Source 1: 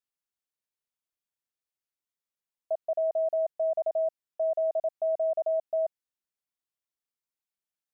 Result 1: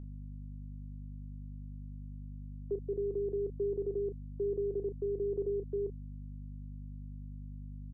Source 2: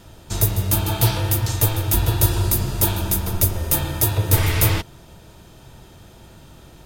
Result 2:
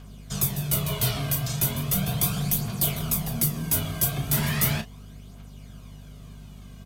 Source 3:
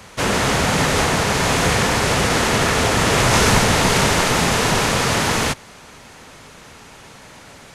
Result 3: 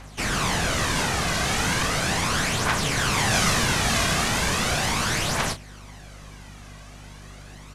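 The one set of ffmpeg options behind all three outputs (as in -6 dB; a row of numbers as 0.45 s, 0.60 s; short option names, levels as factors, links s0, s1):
-filter_complex "[0:a]acrossover=split=440|990[s0][s1][s2];[s0]asoftclip=type=tanh:threshold=0.15[s3];[s1]alimiter=level_in=1.06:limit=0.0631:level=0:latency=1,volume=0.944[s4];[s2]aphaser=in_gain=1:out_gain=1:delay=2.3:decay=0.53:speed=0.37:type=triangular[s5];[s3][s4][s5]amix=inputs=3:normalize=0,afreqshift=-240,aeval=exprs='val(0)+0.0158*(sin(2*PI*50*n/s)+sin(2*PI*2*50*n/s)/2+sin(2*PI*3*50*n/s)/3+sin(2*PI*4*50*n/s)/4+sin(2*PI*5*50*n/s)/5)':c=same,asplit=2[s6][s7];[s7]adelay=33,volume=0.299[s8];[s6][s8]amix=inputs=2:normalize=0,volume=0.501"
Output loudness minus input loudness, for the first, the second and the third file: -9.5 LU, -5.5 LU, -6.0 LU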